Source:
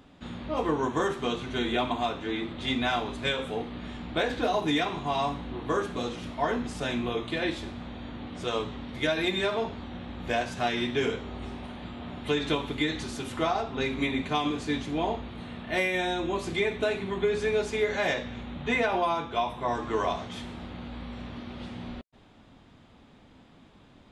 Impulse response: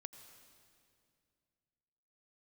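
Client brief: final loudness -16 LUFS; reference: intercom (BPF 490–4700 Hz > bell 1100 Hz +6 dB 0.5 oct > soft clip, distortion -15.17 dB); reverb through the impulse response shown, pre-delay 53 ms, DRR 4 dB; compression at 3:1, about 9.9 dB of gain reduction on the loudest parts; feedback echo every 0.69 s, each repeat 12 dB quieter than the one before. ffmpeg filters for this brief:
-filter_complex "[0:a]acompressor=threshold=-36dB:ratio=3,aecho=1:1:690|1380|2070:0.251|0.0628|0.0157,asplit=2[a][b];[1:a]atrim=start_sample=2205,adelay=53[c];[b][c]afir=irnorm=-1:irlink=0,volume=1.5dB[d];[a][d]amix=inputs=2:normalize=0,highpass=490,lowpass=4.7k,equalizer=f=1.1k:t=o:w=0.5:g=6,asoftclip=threshold=-30.5dB,volume=23.5dB"

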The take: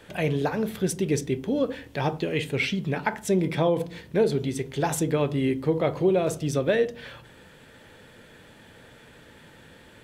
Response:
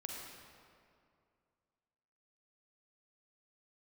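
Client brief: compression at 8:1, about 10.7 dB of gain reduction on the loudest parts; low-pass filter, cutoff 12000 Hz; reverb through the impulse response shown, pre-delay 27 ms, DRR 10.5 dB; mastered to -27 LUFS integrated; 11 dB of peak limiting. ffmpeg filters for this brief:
-filter_complex "[0:a]lowpass=12k,acompressor=threshold=-29dB:ratio=8,alimiter=level_in=1.5dB:limit=-24dB:level=0:latency=1,volume=-1.5dB,asplit=2[a][b];[1:a]atrim=start_sample=2205,adelay=27[c];[b][c]afir=irnorm=-1:irlink=0,volume=-9.5dB[d];[a][d]amix=inputs=2:normalize=0,volume=8.5dB"

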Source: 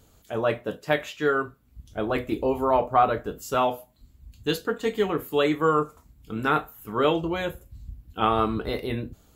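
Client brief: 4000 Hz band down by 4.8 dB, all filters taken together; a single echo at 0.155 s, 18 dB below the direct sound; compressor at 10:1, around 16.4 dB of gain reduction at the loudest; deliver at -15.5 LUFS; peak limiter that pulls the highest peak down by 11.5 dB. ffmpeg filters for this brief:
-af "equalizer=f=4k:t=o:g=-6.5,acompressor=threshold=-31dB:ratio=10,alimiter=level_in=6.5dB:limit=-24dB:level=0:latency=1,volume=-6.5dB,aecho=1:1:155:0.126,volume=25.5dB"

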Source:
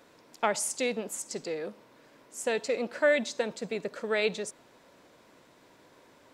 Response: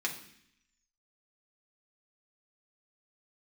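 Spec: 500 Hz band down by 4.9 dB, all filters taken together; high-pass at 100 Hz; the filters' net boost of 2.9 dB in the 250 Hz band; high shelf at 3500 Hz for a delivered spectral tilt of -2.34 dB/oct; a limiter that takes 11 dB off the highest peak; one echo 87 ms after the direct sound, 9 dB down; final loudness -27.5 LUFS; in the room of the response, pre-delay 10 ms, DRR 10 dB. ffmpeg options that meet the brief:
-filter_complex "[0:a]highpass=100,equalizer=f=250:t=o:g=5,equalizer=f=500:t=o:g=-7,highshelf=f=3.5k:g=3.5,alimiter=limit=-22.5dB:level=0:latency=1,aecho=1:1:87:0.355,asplit=2[a][b];[1:a]atrim=start_sample=2205,adelay=10[c];[b][c]afir=irnorm=-1:irlink=0,volume=-15dB[d];[a][d]amix=inputs=2:normalize=0,volume=6dB"

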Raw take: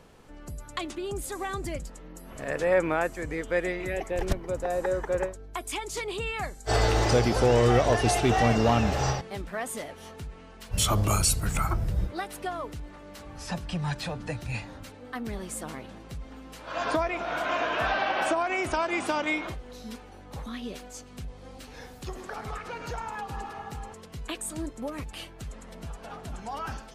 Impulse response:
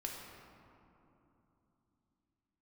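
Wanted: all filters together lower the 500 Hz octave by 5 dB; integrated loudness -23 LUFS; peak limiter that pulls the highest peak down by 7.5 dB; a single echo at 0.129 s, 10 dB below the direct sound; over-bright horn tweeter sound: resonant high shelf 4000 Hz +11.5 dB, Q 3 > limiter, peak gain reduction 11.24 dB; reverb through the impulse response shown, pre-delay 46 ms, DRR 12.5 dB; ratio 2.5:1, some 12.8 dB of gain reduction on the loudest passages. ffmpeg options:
-filter_complex "[0:a]equalizer=f=500:t=o:g=-6,acompressor=threshold=-40dB:ratio=2.5,alimiter=level_in=6dB:limit=-24dB:level=0:latency=1,volume=-6dB,aecho=1:1:129:0.316,asplit=2[a][b];[1:a]atrim=start_sample=2205,adelay=46[c];[b][c]afir=irnorm=-1:irlink=0,volume=-12dB[d];[a][d]amix=inputs=2:normalize=0,highshelf=f=4k:t=q:w=3:g=11.5,volume=14dB,alimiter=limit=-11.5dB:level=0:latency=1"

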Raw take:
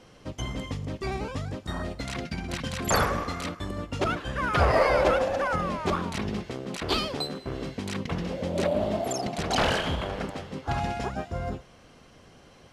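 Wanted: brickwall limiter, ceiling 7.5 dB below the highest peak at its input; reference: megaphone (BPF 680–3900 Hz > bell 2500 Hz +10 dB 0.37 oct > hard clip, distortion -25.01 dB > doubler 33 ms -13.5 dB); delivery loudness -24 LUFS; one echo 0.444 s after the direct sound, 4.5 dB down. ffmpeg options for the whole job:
-filter_complex "[0:a]alimiter=limit=-16.5dB:level=0:latency=1,highpass=680,lowpass=3.9k,equalizer=f=2.5k:t=o:w=0.37:g=10,aecho=1:1:444:0.596,asoftclip=type=hard:threshold=-20dB,asplit=2[a][b];[b]adelay=33,volume=-13.5dB[c];[a][c]amix=inputs=2:normalize=0,volume=7dB"

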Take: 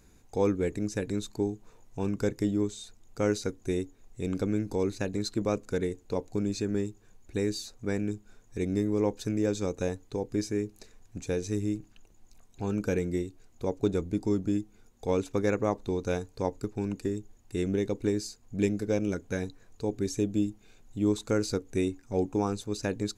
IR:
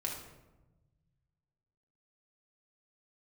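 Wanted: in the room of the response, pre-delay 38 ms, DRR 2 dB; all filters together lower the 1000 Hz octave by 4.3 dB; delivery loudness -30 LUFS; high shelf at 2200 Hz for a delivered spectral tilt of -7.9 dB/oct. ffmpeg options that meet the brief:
-filter_complex "[0:a]equalizer=f=1k:t=o:g=-5,highshelf=f=2.2k:g=-4.5,asplit=2[a][b];[1:a]atrim=start_sample=2205,adelay=38[c];[b][c]afir=irnorm=-1:irlink=0,volume=-4dB[d];[a][d]amix=inputs=2:normalize=0,volume=-1dB"

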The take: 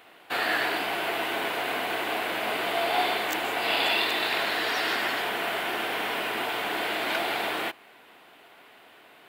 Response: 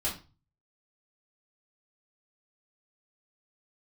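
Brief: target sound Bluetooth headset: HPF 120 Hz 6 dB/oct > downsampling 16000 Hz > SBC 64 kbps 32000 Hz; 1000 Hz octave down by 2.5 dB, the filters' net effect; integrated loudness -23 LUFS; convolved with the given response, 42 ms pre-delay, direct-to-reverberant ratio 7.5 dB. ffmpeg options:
-filter_complex "[0:a]equalizer=f=1k:t=o:g=-3.5,asplit=2[a][b];[1:a]atrim=start_sample=2205,adelay=42[c];[b][c]afir=irnorm=-1:irlink=0,volume=-13dB[d];[a][d]amix=inputs=2:normalize=0,highpass=f=120:p=1,aresample=16000,aresample=44100,volume=4dB" -ar 32000 -c:a sbc -b:a 64k

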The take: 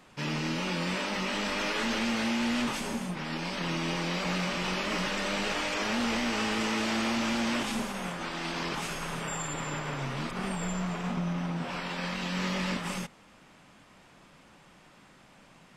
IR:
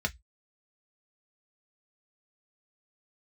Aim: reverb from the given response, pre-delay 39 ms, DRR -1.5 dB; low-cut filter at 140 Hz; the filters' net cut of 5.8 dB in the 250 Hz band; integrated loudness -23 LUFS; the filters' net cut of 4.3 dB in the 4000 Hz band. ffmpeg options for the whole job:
-filter_complex "[0:a]highpass=140,equalizer=f=250:t=o:g=-6.5,equalizer=f=4k:t=o:g=-6,asplit=2[a][b];[1:a]atrim=start_sample=2205,adelay=39[c];[b][c]afir=irnorm=-1:irlink=0,volume=-4.5dB[d];[a][d]amix=inputs=2:normalize=0,volume=7dB"

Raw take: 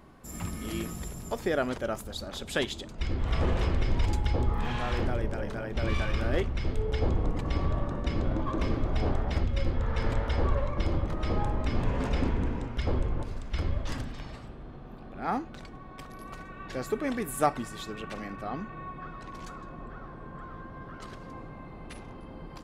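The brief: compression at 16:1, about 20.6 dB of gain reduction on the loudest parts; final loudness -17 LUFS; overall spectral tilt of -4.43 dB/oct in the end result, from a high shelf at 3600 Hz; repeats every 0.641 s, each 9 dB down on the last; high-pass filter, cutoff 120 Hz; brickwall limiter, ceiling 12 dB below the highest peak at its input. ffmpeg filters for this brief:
-af "highpass=120,highshelf=f=3.6k:g=9,acompressor=threshold=-39dB:ratio=16,alimiter=level_in=14dB:limit=-24dB:level=0:latency=1,volume=-14dB,aecho=1:1:641|1282|1923|2564:0.355|0.124|0.0435|0.0152,volume=29.5dB"

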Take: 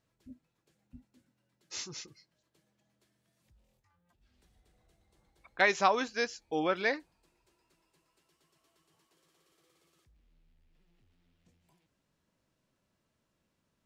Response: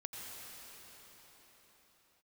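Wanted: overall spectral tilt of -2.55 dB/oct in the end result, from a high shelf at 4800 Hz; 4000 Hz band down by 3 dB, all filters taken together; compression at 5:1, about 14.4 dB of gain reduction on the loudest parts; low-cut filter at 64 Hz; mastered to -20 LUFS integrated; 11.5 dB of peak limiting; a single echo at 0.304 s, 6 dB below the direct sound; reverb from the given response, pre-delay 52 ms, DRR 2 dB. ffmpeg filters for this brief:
-filter_complex "[0:a]highpass=64,equalizer=f=4k:t=o:g=-6.5,highshelf=f=4.8k:g=5,acompressor=threshold=-37dB:ratio=5,alimiter=level_in=8dB:limit=-24dB:level=0:latency=1,volume=-8dB,aecho=1:1:304:0.501,asplit=2[a][b];[1:a]atrim=start_sample=2205,adelay=52[c];[b][c]afir=irnorm=-1:irlink=0,volume=-1.5dB[d];[a][d]amix=inputs=2:normalize=0,volume=24.5dB"

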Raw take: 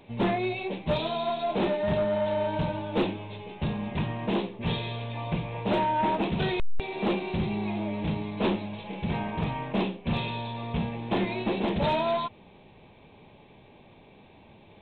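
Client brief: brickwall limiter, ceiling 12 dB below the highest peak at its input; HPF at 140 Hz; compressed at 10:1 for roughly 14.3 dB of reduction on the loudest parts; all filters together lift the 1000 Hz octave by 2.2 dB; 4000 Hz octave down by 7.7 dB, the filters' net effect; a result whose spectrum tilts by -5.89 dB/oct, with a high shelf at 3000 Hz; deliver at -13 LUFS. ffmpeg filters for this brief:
-af "highpass=140,equalizer=f=1k:t=o:g=3.5,highshelf=f=3k:g=-8,equalizer=f=4k:t=o:g=-4.5,acompressor=threshold=-36dB:ratio=10,volume=29dB,alimiter=limit=-4.5dB:level=0:latency=1"

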